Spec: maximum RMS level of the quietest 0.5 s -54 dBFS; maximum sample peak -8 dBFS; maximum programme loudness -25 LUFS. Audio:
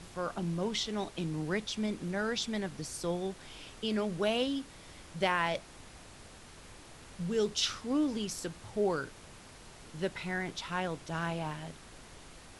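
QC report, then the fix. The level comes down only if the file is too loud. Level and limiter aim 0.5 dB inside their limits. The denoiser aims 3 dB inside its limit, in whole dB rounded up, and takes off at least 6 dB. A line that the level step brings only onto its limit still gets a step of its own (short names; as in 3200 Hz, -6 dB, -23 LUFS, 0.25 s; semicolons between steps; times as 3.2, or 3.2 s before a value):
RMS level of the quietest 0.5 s -52 dBFS: fail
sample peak -15.5 dBFS: OK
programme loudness -34.5 LUFS: OK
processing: denoiser 6 dB, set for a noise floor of -52 dBFS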